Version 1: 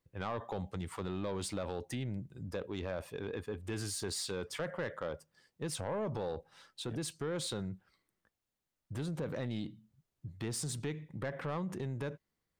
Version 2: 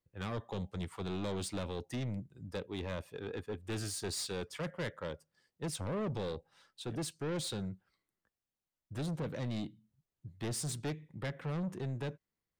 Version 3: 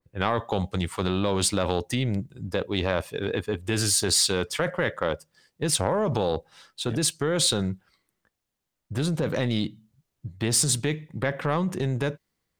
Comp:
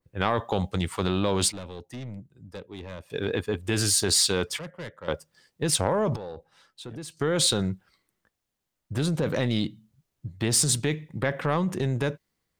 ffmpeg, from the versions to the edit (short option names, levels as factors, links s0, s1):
-filter_complex "[1:a]asplit=2[s0][s1];[2:a]asplit=4[s2][s3][s4][s5];[s2]atrim=end=1.522[s6];[s0]atrim=start=1.518:end=3.102[s7];[s3]atrim=start=3.098:end=4.592[s8];[s1]atrim=start=4.588:end=5.082[s9];[s4]atrim=start=5.078:end=6.162[s10];[0:a]atrim=start=6.158:end=7.172[s11];[s5]atrim=start=7.168[s12];[s6][s7]acrossfade=d=0.004:c1=hsin:c2=hsin[s13];[s13][s8]acrossfade=d=0.004:c1=hsin:c2=hsin[s14];[s14][s9]acrossfade=d=0.004:c1=hsin:c2=hsin[s15];[s15][s10]acrossfade=d=0.004:c1=hsin:c2=hsin[s16];[s16][s11]acrossfade=d=0.004:c1=hsin:c2=hsin[s17];[s17][s12]acrossfade=d=0.004:c1=hsin:c2=hsin"